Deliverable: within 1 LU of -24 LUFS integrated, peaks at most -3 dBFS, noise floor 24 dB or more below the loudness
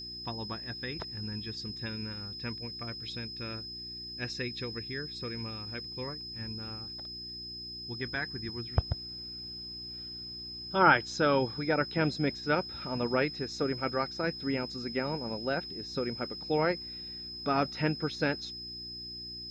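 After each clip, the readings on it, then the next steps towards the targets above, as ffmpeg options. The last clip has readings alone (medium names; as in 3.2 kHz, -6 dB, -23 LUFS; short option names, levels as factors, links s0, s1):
hum 60 Hz; highest harmonic 360 Hz; hum level -51 dBFS; steady tone 5.1 kHz; tone level -40 dBFS; loudness -33.5 LUFS; peak level -9.0 dBFS; loudness target -24.0 LUFS
-> -af "bandreject=f=60:t=h:w=4,bandreject=f=120:t=h:w=4,bandreject=f=180:t=h:w=4,bandreject=f=240:t=h:w=4,bandreject=f=300:t=h:w=4,bandreject=f=360:t=h:w=4"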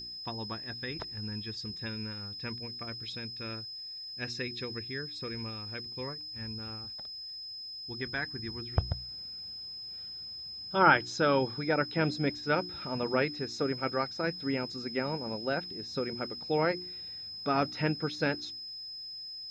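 hum not found; steady tone 5.1 kHz; tone level -40 dBFS
-> -af "bandreject=f=5100:w=30"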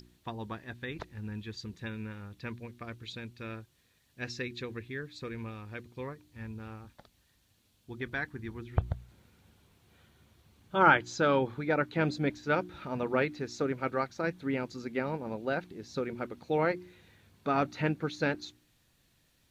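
steady tone not found; loudness -33.5 LUFS; peak level -9.5 dBFS; loudness target -24.0 LUFS
-> -af "volume=2.99,alimiter=limit=0.708:level=0:latency=1"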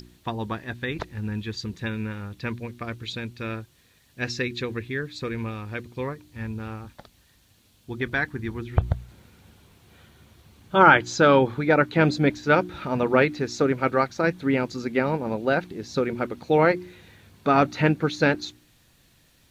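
loudness -24.5 LUFS; peak level -3.0 dBFS; noise floor -61 dBFS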